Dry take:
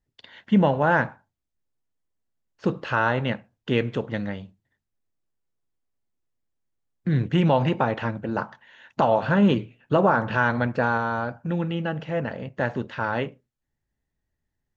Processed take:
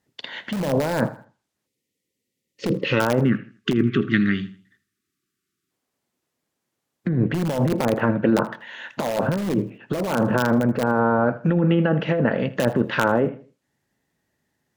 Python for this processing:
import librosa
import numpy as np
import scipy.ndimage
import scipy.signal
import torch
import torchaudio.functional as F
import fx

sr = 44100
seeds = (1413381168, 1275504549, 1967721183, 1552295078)

p1 = fx.spec_box(x, sr, start_s=1.67, length_s=1.33, low_hz=570.0, high_hz=1800.0, gain_db=-18)
p2 = scipy.signal.sosfilt(scipy.signal.butter(2, 170.0, 'highpass', fs=sr, output='sos'), p1)
p3 = fx.spec_box(p2, sr, start_s=3.25, length_s=2.46, low_hz=410.0, high_hz=1100.0, gain_db=-26)
p4 = fx.env_lowpass_down(p3, sr, base_hz=830.0, full_db=-22.0)
p5 = (np.mod(10.0 ** (16.0 / 20.0) * p4 + 1.0, 2.0) - 1.0) / 10.0 ** (16.0 / 20.0)
p6 = p4 + (p5 * 10.0 ** (-8.0 / 20.0))
p7 = fx.over_compress(p6, sr, threshold_db=-26.0, ratio=-1.0)
p8 = fx.dynamic_eq(p7, sr, hz=820.0, q=2.2, threshold_db=-42.0, ratio=4.0, max_db=-6)
p9 = p8 + fx.echo_feedback(p8, sr, ms=80, feedback_pct=33, wet_db=-18.0, dry=0)
y = p9 * 10.0 ** (7.0 / 20.0)